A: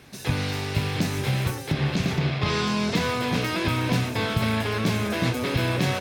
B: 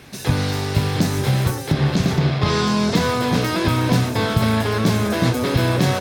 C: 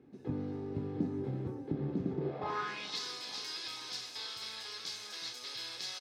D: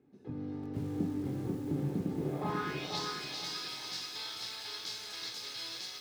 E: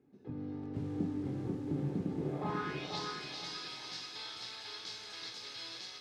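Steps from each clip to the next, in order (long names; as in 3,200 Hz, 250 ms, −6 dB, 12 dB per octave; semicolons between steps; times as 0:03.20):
dynamic equaliser 2,500 Hz, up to −7 dB, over −46 dBFS, Q 1.7; level +6.5 dB
comb filter 2.4 ms, depth 35%; band-pass filter sweep 270 Hz → 4,800 Hz, 0:02.15–0:02.99; feedback echo with a high-pass in the loop 439 ms, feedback 74%, high-pass 240 Hz, level −15 dB; level −8 dB
automatic gain control gain up to 6.5 dB; on a send at −10 dB: convolution reverb, pre-delay 7 ms; on the sum: feedback echo at a low word length 490 ms, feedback 35%, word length 8 bits, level −3.5 dB; level −7 dB
high-frequency loss of the air 65 metres; level −1.5 dB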